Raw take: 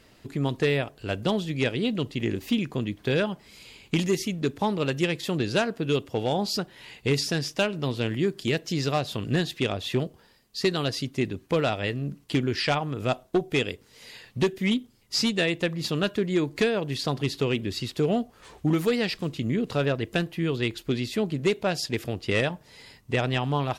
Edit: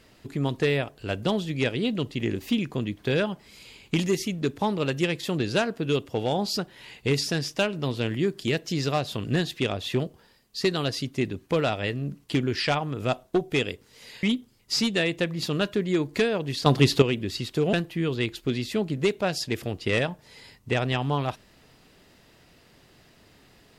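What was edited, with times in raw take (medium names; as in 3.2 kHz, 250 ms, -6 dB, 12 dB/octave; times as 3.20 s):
14.23–14.65 s: delete
17.08–17.44 s: gain +8.5 dB
18.15–20.15 s: delete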